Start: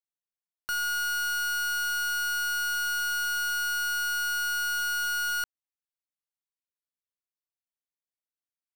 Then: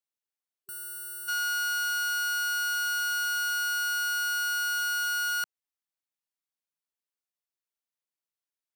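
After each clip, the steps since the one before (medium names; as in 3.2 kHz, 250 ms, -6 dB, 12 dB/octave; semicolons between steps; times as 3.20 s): high-pass 240 Hz 6 dB/octave; time-frequency box 0.66–1.28 s, 400–7800 Hz -19 dB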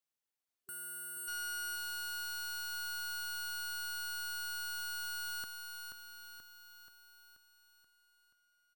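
saturation -39.5 dBFS, distortion -12 dB; feedback delay 481 ms, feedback 56%, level -6 dB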